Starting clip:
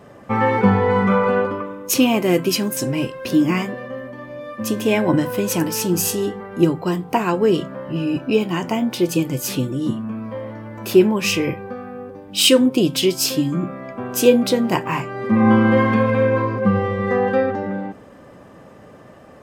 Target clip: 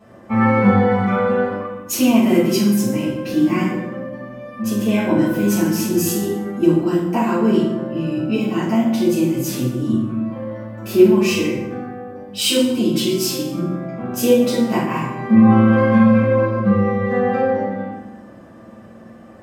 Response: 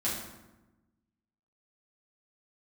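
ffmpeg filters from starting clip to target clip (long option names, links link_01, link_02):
-filter_complex "[0:a]asettb=1/sr,asplit=3[link_01][link_02][link_03];[link_01]atrim=end=11.634[link_04];[link_02]atrim=start=11.63:end=13.99,asetpts=PTS-STARTPTS,afade=type=in:duration=0.004:curve=qsin,afade=type=out:start_time=2.356:duration=0.004:curve=qsin,acrossover=split=180|3000[link_05][link_06][link_07];[link_06]acompressor=threshold=-21dB:ratio=1.5[link_08];[link_05][link_08][link_07]amix=inputs=3:normalize=0[link_09];[link_03]atrim=start=13.986[link_10];[link_04][link_09]acrossfade=duration=0.004:curve1=hsin:curve2=qsin[link_11];[link_11][link_10]acrossfade=duration=0.004:curve1=qsin:curve2=hsin[link_12];[1:a]atrim=start_sample=2205[link_13];[link_12][link_13]afir=irnorm=-1:irlink=0,volume=-7.5dB"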